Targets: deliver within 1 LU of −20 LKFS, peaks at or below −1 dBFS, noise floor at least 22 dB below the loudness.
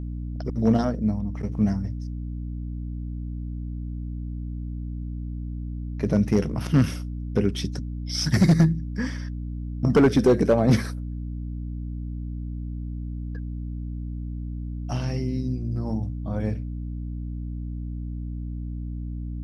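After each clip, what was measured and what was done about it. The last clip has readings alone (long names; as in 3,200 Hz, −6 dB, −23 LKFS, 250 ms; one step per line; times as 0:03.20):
share of clipped samples 0.4%; peaks flattened at −11.0 dBFS; mains hum 60 Hz; hum harmonics up to 300 Hz; level of the hum −29 dBFS; integrated loudness −27.0 LKFS; sample peak −11.0 dBFS; target loudness −20.0 LKFS
→ clipped peaks rebuilt −11 dBFS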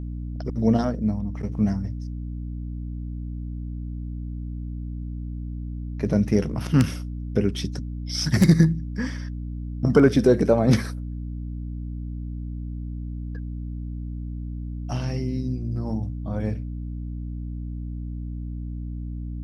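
share of clipped samples 0.0%; mains hum 60 Hz; hum harmonics up to 300 Hz; level of the hum −29 dBFS
→ mains-hum notches 60/120/180/240/300 Hz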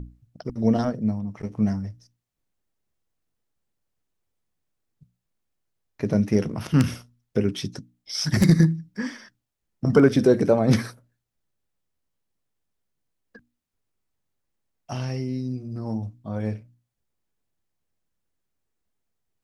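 mains hum none found; integrated loudness −23.5 LKFS; sample peak −2.5 dBFS; target loudness −20.0 LKFS
→ level +3.5 dB
brickwall limiter −1 dBFS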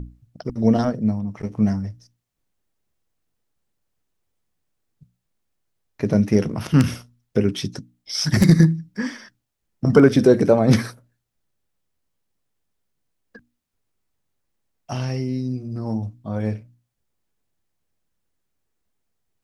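integrated loudness −20.0 LKFS; sample peak −1.0 dBFS; background noise floor −77 dBFS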